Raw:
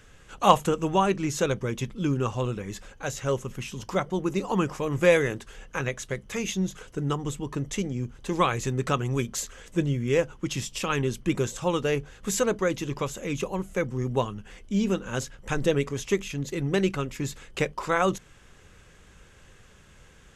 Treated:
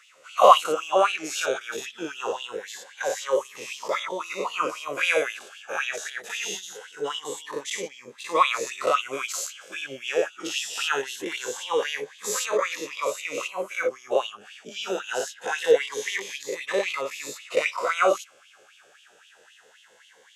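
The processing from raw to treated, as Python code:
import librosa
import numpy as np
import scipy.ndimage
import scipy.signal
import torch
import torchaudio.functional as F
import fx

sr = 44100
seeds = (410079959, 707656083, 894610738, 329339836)

y = fx.spec_dilate(x, sr, span_ms=120)
y = fx.filter_lfo_highpass(y, sr, shape='sine', hz=3.8, low_hz=480.0, high_hz=3100.0, q=4.4)
y = fx.notch_cascade(y, sr, direction='rising', hz=0.23)
y = y * librosa.db_to_amplitude(-4.5)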